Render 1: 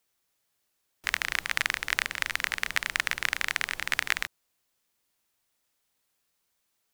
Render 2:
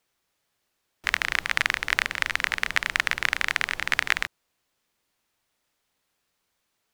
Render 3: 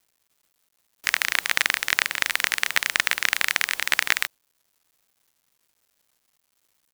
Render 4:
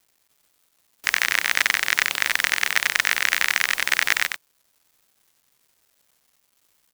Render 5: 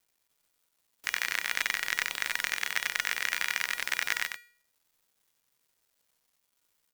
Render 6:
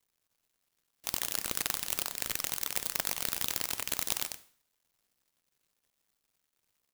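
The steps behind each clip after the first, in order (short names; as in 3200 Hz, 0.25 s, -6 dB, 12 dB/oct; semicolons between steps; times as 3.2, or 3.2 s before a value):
high shelf 6200 Hz -9.5 dB; gain +5 dB
RIAA curve recording; companded quantiser 4-bit; gain -1 dB
soft clip -4.5 dBFS, distortion -14 dB; echo 93 ms -5.5 dB; gain +3.5 dB
resonator 480 Hz, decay 0.51 s, mix 70%
noise-modulated delay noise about 4300 Hz, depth 0.36 ms; gain -2.5 dB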